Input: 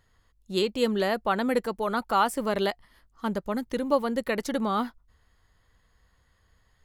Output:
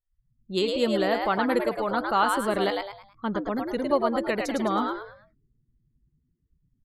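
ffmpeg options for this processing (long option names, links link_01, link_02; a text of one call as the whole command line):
ffmpeg -i in.wav -filter_complex "[0:a]afftdn=noise_reduction=35:noise_floor=-47,asplit=5[link_01][link_02][link_03][link_04][link_05];[link_02]adelay=107,afreqshift=100,volume=-4dB[link_06];[link_03]adelay=214,afreqshift=200,volume=-13.4dB[link_07];[link_04]adelay=321,afreqshift=300,volume=-22.7dB[link_08];[link_05]adelay=428,afreqshift=400,volume=-32.1dB[link_09];[link_01][link_06][link_07][link_08][link_09]amix=inputs=5:normalize=0" out.wav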